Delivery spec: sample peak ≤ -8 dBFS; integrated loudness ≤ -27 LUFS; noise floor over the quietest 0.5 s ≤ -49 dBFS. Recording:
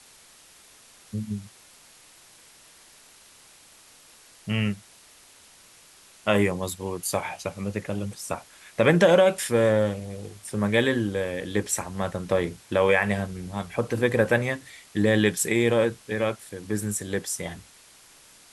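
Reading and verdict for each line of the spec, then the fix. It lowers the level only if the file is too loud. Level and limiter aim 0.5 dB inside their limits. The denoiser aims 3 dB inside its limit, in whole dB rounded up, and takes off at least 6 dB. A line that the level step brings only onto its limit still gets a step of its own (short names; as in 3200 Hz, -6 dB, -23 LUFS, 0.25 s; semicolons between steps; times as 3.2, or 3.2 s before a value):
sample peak -5.0 dBFS: fail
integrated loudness -25.0 LUFS: fail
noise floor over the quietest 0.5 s -53 dBFS: OK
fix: gain -2.5 dB; limiter -8.5 dBFS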